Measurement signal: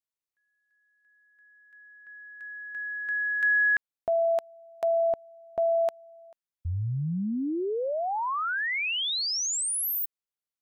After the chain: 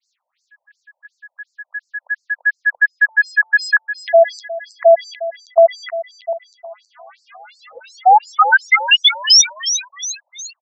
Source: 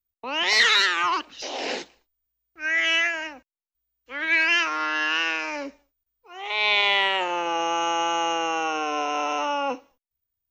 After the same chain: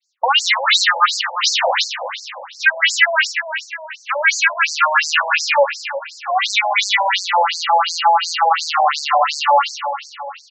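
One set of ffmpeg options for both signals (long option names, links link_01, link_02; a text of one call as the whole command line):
ffmpeg -i in.wav -filter_complex "[0:a]adynamicequalizer=threshold=0.0224:dfrequency=3100:dqfactor=1.6:tfrequency=3100:tqfactor=1.6:attack=5:release=100:ratio=0.4:range=2:mode=cutabove:tftype=bell,acompressor=threshold=-34dB:ratio=10:attack=2.1:release=50:knee=6:detection=rms,aresample=16000,aeval=exprs='0.0224*(abs(mod(val(0)/0.0224+3,4)-2)-1)':channel_layout=same,aresample=44100,apsyclip=34.5dB,asplit=2[link_01][link_02];[link_02]aecho=0:1:320|640|960|1280|1600:0.316|0.155|0.0759|0.0372|0.0182[link_03];[link_01][link_03]amix=inputs=2:normalize=0,afftfilt=real='re*between(b*sr/1024,670*pow(6100/670,0.5+0.5*sin(2*PI*2.8*pts/sr))/1.41,670*pow(6100/670,0.5+0.5*sin(2*PI*2.8*pts/sr))*1.41)':imag='im*between(b*sr/1024,670*pow(6100/670,0.5+0.5*sin(2*PI*2.8*pts/sr))/1.41,670*pow(6100/670,0.5+0.5*sin(2*PI*2.8*pts/sr))*1.41)':win_size=1024:overlap=0.75,volume=-4dB" out.wav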